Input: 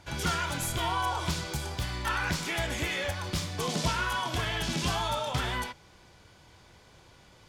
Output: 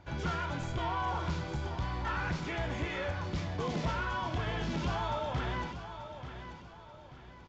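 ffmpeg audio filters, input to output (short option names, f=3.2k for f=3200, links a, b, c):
-af "lowpass=f=1.2k:p=1,aresample=16000,asoftclip=type=tanh:threshold=-26dB,aresample=44100,aecho=1:1:886|1772|2658|3544:0.299|0.113|0.0431|0.0164"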